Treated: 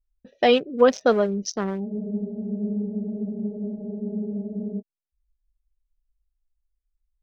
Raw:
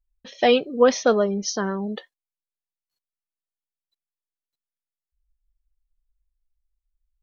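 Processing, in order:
adaptive Wiener filter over 41 samples
frozen spectrum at 0:01.89, 2.91 s

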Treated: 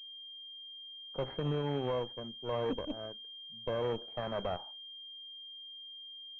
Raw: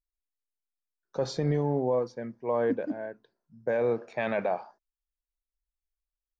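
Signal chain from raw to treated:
harmonic generator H 6 −15 dB, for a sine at −16 dBFS
switching amplifier with a slow clock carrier 3,200 Hz
level −7.5 dB

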